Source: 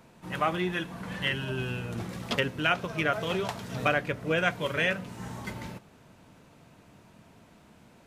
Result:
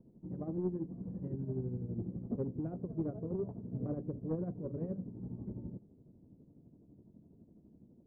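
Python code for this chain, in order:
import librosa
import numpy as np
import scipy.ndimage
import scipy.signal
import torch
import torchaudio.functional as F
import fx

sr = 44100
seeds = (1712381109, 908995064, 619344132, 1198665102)

y = fx.ladder_lowpass(x, sr, hz=420.0, resonance_pct=30)
y = 10.0 ** (-28.5 / 20.0) * np.tanh(y / 10.0 ** (-28.5 / 20.0))
y = y * (1.0 - 0.58 / 2.0 + 0.58 / 2.0 * np.cos(2.0 * np.pi * 12.0 * (np.arange(len(y)) / sr)))
y = F.gain(torch.from_numpy(y), 5.0).numpy()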